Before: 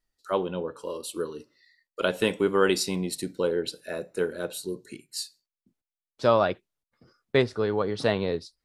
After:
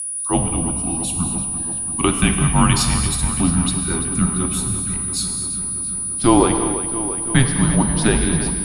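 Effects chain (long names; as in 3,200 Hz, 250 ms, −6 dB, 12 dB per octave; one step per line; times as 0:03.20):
steady tone 10,000 Hz −31 dBFS
reverb whose tail is shaped and stops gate 280 ms flat, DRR 5.5 dB
frequency shifter −250 Hz
on a send: feedback echo with a low-pass in the loop 339 ms, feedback 76%, low-pass 4,400 Hz, level −11 dB
on the sum: level +7 dB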